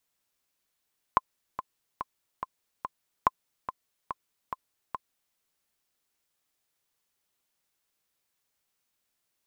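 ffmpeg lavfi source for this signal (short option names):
-f lavfi -i "aevalsrc='pow(10,(-7-12*gte(mod(t,5*60/143),60/143))/20)*sin(2*PI*1040*mod(t,60/143))*exp(-6.91*mod(t,60/143)/0.03)':d=4.19:s=44100"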